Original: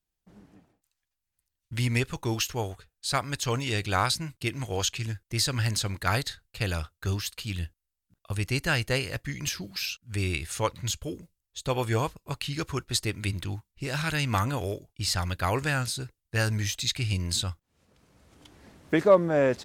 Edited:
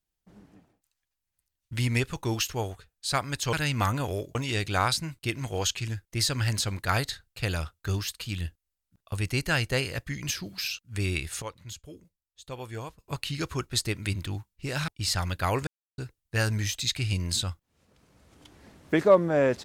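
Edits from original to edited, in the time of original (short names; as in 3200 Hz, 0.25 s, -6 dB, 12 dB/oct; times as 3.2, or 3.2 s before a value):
10.6–12.17 gain -11 dB
14.06–14.88 move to 3.53
15.67–15.98 mute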